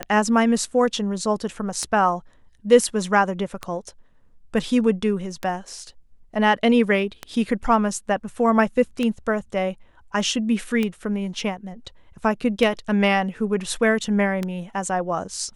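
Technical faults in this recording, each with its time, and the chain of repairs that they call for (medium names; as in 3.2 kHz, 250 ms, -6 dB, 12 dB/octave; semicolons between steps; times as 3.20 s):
tick 33 1/3 rpm -11 dBFS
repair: de-click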